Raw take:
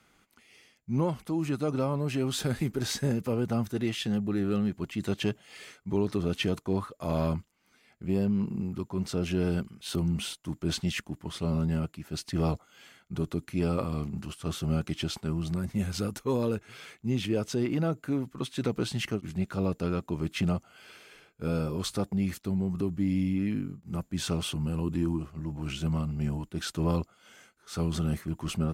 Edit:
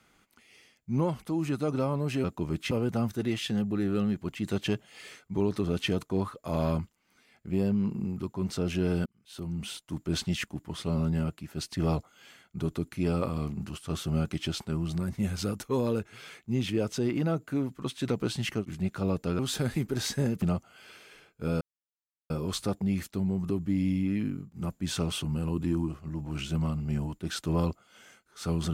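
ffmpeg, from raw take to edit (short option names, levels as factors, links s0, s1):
-filter_complex "[0:a]asplit=7[s0][s1][s2][s3][s4][s5][s6];[s0]atrim=end=2.242[s7];[s1]atrim=start=19.948:end=20.422[s8];[s2]atrim=start=3.268:end=9.62,asetpts=PTS-STARTPTS,afade=t=out:st=6.348:d=0.004:c=hsin[s9];[s3]atrim=start=9.62:end=19.952,asetpts=PTS-STARTPTS,afade=t=in:d=0.95[s10];[s4]atrim=start=2.238:end=3.272[s11];[s5]atrim=start=20.418:end=21.61,asetpts=PTS-STARTPTS,afade=t=out:st=1.188:d=0.004:c=hsin,apad=pad_dur=0.69[s12];[s6]atrim=start=21.61,asetpts=PTS-STARTPTS,afade=t=in:d=0.004:c=hsin[s13];[s7][s8]acrossfade=d=0.004:c1=hsin:c2=hsin[s14];[s9][s10]concat=n=2:v=0:a=1[s15];[s14][s15]acrossfade=d=0.004:c1=hsin:c2=hsin[s16];[s16][s11]acrossfade=d=0.004:c1=hsin:c2=hsin[s17];[s12][s13]concat=n=2:v=0:a=1[s18];[s17][s18]acrossfade=d=0.004:c1=hsin:c2=hsin"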